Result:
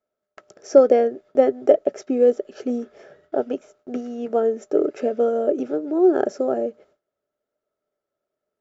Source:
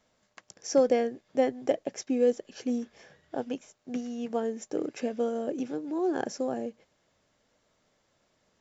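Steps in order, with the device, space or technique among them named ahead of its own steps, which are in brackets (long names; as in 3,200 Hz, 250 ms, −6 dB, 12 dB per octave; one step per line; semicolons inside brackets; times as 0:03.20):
inside a helmet (high-shelf EQ 5,300 Hz −5 dB; hollow resonant body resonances 410/590/1,300 Hz, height 17 dB, ringing for 30 ms)
noise gate with hold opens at −45 dBFS
level −1 dB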